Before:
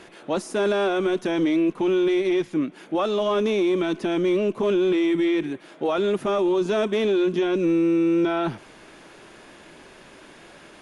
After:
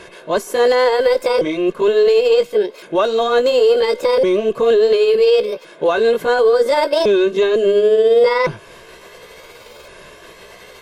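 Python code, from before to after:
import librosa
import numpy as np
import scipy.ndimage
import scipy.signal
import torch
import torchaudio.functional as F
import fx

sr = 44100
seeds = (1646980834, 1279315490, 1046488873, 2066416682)

y = fx.pitch_ramps(x, sr, semitones=7.0, every_ms=1411)
y = y + 0.65 * np.pad(y, (int(1.9 * sr / 1000.0), 0))[:len(y)]
y = y * 10.0 ** (6.5 / 20.0)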